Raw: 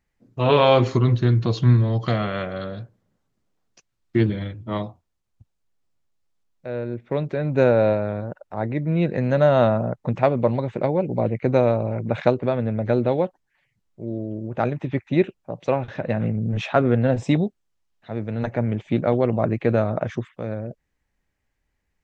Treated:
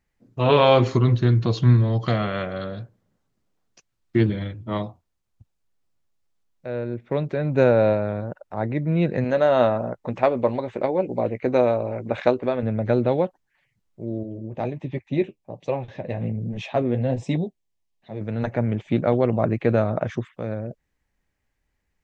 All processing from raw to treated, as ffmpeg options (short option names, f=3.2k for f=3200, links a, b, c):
-filter_complex "[0:a]asettb=1/sr,asplit=3[a][b][c];[a]atrim=end=9.244[d];[b]atrim=start=9.24:end=12.63,asetpts=PTS-STARTPTS,afade=t=in:d=0.004:c=qsin,afade=t=out:st=3.386:d=0.004:c=qsin,equalizer=f=140:w=1.8:g=-13,bandreject=f=1.4k:w=26,asplit=2[e][f];[f]adelay=16,volume=-14dB[g];[e][g]amix=inputs=2:normalize=0,atrim=end_sample=149499[h];[c]atrim=start=12.626[i];[d][h]acrossfade=d=0.004:c1=hsin:c2=qsin[j];[j][i]acrossfade=d=0.004:c1=qsin:c2=hsin,asettb=1/sr,asplit=3[k][l][m];[k]atrim=end=14.234[n];[l]atrim=start=14.23:end=18.21,asetpts=PTS-STARTPTS,afade=t=in:d=0.004:c=qsin,afade=t=out:st=3.976:d=0.004:c=qsin,flanger=delay=4.6:depth=7.4:regen=-41:speed=1.3:shape=triangular,equalizer=f=1.4k:w=3.6:g=-14[o];[m]atrim=start=18.206[p];[n][o]acrossfade=d=0.004:c1=hsin:c2=qsin[q];[q][p]acrossfade=d=0.004:c1=qsin:c2=hsin"